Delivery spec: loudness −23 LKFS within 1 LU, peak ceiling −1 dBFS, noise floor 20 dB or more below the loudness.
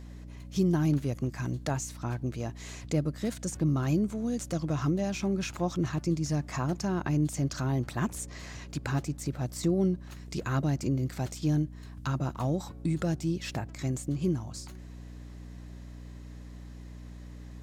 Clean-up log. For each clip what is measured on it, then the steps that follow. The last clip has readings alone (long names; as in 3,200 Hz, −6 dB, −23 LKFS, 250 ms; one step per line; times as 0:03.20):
mains hum 60 Hz; hum harmonics up to 300 Hz; level of the hum −42 dBFS; integrated loudness −31.0 LKFS; sample peak −16.0 dBFS; target loudness −23.0 LKFS
→ hum removal 60 Hz, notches 5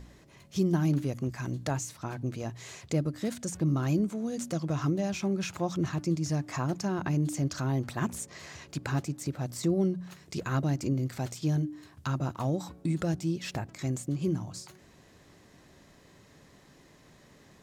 mains hum none found; integrated loudness −31.5 LKFS; sample peak −15.5 dBFS; target loudness −23.0 LKFS
→ level +8.5 dB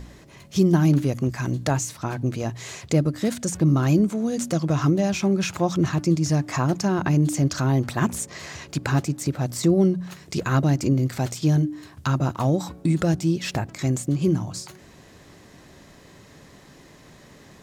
integrated loudness −23.0 LKFS; sample peak −7.0 dBFS; background noise floor −50 dBFS